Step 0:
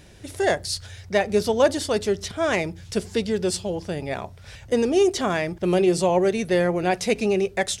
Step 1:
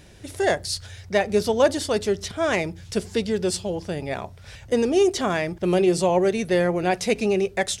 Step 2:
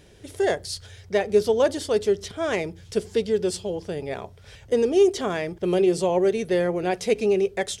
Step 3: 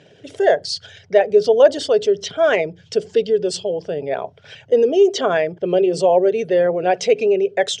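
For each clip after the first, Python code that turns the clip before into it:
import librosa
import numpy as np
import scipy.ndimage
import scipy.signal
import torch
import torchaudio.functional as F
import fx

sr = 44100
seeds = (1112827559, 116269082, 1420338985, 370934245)

y1 = x
y2 = fx.small_body(y1, sr, hz=(430.0, 3200.0), ring_ms=25, db=8)
y2 = y2 * 10.0 ** (-4.5 / 20.0)
y3 = fx.envelope_sharpen(y2, sr, power=1.5)
y3 = fx.cabinet(y3, sr, low_hz=140.0, low_slope=24, high_hz=7300.0, hz=(210.0, 340.0, 650.0, 1500.0, 2900.0), db=(-9, -8, 5, 5, 7))
y3 = y3 * 10.0 ** (7.5 / 20.0)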